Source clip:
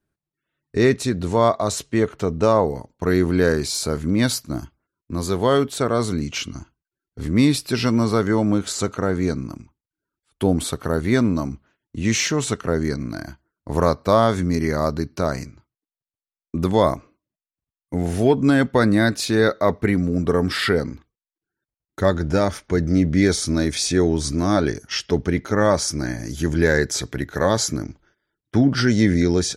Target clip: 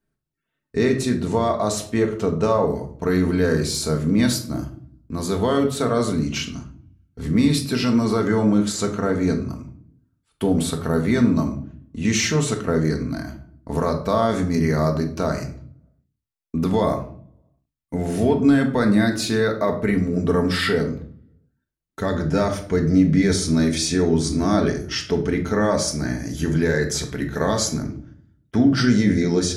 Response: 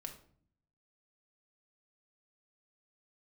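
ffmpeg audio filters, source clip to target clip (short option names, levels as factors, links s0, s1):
-filter_complex "[0:a]alimiter=limit=0.335:level=0:latency=1[s0];[1:a]atrim=start_sample=2205[s1];[s0][s1]afir=irnorm=-1:irlink=0,volume=1.5"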